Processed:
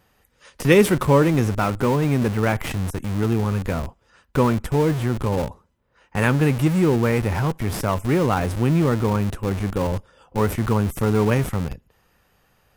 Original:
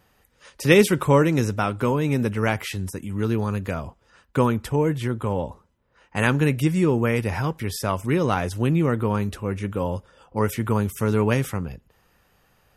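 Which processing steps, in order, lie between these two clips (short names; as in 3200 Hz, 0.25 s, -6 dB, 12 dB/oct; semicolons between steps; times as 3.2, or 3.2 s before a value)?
dynamic EQ 4500 Hz, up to -6 dB, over -47 dBFS, Q 1; in parallel at -6 dB: Schmitt trigger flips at -28.5 dBFS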